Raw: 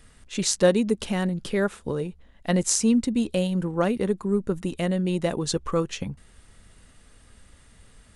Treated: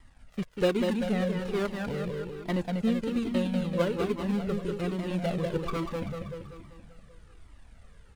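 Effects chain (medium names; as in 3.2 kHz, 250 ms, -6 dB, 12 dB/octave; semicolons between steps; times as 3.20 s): dead-time distortion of 0.2 ms; treble shelf 6.1 kHz -11.5 dB; on a send: feedback delay 193 ms, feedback 57%, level -4 dB; on the sum: Shepard-style flanger falling 1.2 Hz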